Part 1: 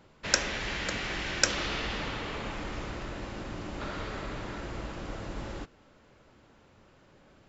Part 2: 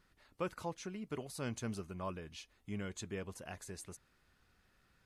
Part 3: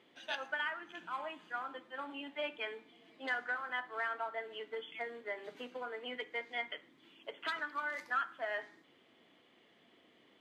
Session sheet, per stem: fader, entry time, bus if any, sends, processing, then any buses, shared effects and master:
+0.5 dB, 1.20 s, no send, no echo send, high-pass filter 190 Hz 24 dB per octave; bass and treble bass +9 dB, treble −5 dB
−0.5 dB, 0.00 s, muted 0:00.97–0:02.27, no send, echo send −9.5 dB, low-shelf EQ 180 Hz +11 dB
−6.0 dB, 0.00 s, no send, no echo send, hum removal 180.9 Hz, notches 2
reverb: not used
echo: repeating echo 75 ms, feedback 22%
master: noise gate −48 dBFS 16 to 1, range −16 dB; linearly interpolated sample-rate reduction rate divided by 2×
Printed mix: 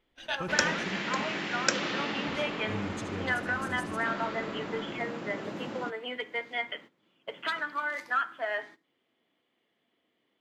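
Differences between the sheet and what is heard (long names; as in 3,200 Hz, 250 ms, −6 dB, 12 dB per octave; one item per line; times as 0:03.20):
stem 1: entry 1.20 s → 0.25 s
stem 3 −6.0 dB → +6.0 dB
master: missing linearly interpolated sample-rate reduction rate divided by 2×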